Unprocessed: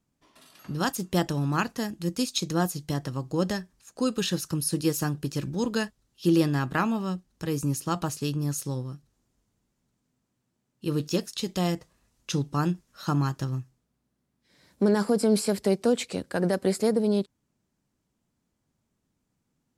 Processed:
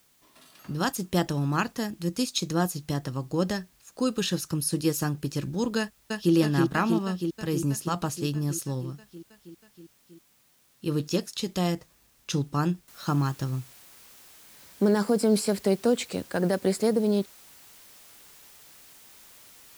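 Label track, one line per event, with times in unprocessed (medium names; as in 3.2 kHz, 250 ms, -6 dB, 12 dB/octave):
5.780000	6.340000	echo throw 320 ms, feedback 75%, level -2.5 dB
12.880000	12.880000	noise floor step -64 dB -52 dB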